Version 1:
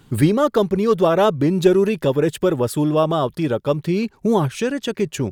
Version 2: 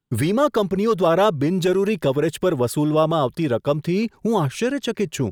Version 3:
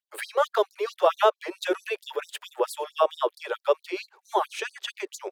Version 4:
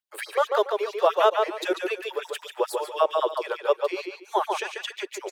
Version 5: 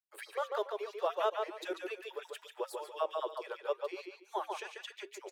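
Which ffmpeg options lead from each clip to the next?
-filter_complex "[0:a]agate=range=-32dB:threshold=-43dB:ratio=16:detection=peak,acrossover=split=620|2700[a][b][c];[a]alimiter=limit=-14.5dB:level=0:latency=1[d];[d][b][c]amix=inputs=3:normalize=0"
-af "bass=f=250:g=-9,treble=f=4k:g=-8,afftfilt=real='re*gte(b*sr/1024,340*pow(4000/340,0.5+0.5*sin(2*PI*4.5*pts/sr)))':imag='im*gte(b*sr/1024,340*pow(4000/340,0.5+0.5*sin(2*PI*4.5*pts/sr)))':win_size=1024:overlap=0.75"
-filter_complex "[0:a]asplit=2[a][b];[b]adelay=142,lowpass=f=4.7k:p=1,volume=-4dB,asplit=2[c][d];[d]adelay=142,lowpass=f=4.7k:p=1,volume=0.25,asplit=2[e][f];[f]adelay=142,lowpass=f=4.7k:p=1,volume=0.25[g];[a][c][e][g]amix=inputs=4:normalize=0"
-af "flanger=delay=2.7:depth=2.8:regen=-88:speed=0.75:shape=triangular,volume=-8dB"

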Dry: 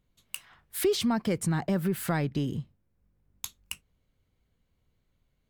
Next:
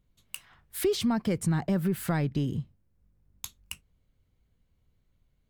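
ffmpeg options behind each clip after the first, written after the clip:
-af "lowshelf=f=180:g=6.5,volume=-2dB"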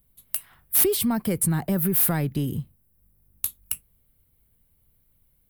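-filter_complex "[0:a]aexciter=amount=10.2:drive=6.5:freq=9.1k,acrossover=split=390[a][b];[b]asoftclip=type=tanh:threshold=-16.5dB[c];[a][c]amix=inputs=2:normalize=0,volume=2.5dB"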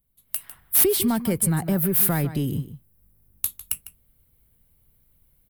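-filter_complex "[0:a]asplit=2[a][b];[b]adelay=151.6,volume=-13dB,highshelf=f=4k:g=-3.41[c];[a][c]amix=inputs=2:normalize=0,dynaudnorm=f=200:g=3:m=11dB,volume=-8.5dB"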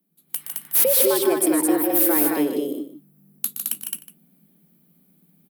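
-filter_complex "[0:a]afreqshift=150,asplit=2[a][b];[b]aecho=0:1:119.5|154.5|215.7:0.316|0.501|0.708[c];[a][c]amix=inputs=2:normalize=0"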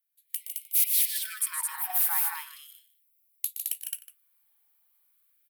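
-af "afftfilt=real='re*gte(b*sr/1024,710*pow(2100/710,0.5+0.5*sin(2*PI*0.37*pts/sr)))':imag='im*gte(b*sr/1024,710*pow(2100/710,0.5+0.5*sin(2*PI*0.37*pts/sr)))':win_size=1024:overlap=0.75,volume=-5.5dB"

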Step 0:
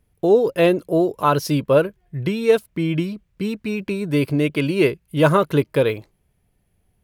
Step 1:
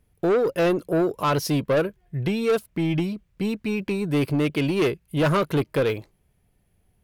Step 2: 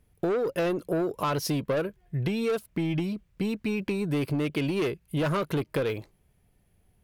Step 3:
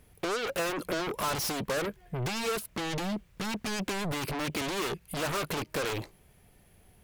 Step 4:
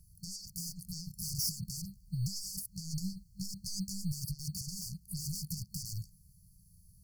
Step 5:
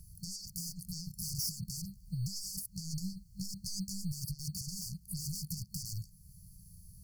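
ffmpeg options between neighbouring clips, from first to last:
-af "asoftclip=type=tanh:threshold=-16.5dB"
-af "acompressor=threshold=-25dB:ratio=6"
-filter_complex "[0:a]lowshelf=f=280:g=-7,asplit=2[a][b];[b]aeval=exprs='0.126*sin(PI/2*8.91*val(0)/0.126)':c=same,volume=-10.5dB[c];[a][c]amix=inputs=2:normalize=0,volume=-3.5dB"
-filter_complex "[0:a]afftfilt=real='re*(1-between(b*sr/4096,200,4400))':imag='im*(1-between(b*sr/4096,200,4400))':win_size=4096:overlap=0.75,acrossover=split=1300[a][b];[a]acrusher=samples=10:mix=1:aa=0.000001[c];[c][b]amix=inputs=2:normalize=0"
-af "acompressor=threshold=-58dB:ratio=1.5,volume=7.5dB"

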